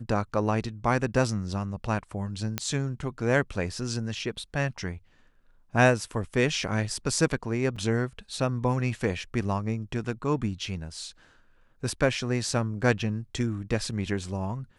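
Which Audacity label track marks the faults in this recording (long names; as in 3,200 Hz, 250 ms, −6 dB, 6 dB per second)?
2.580000	2.580000	click −11 dBFS
7.760000	7.760000	drop-out 4.8 ms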